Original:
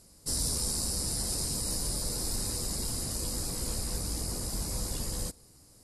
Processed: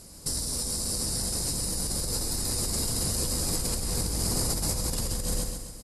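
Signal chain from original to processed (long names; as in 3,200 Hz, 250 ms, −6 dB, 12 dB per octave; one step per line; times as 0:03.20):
repeating echo 133 ms, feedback 48%, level −5 dB
compressor whose output falls as the input rises −35 dBFS, ratio −1
level +6 dB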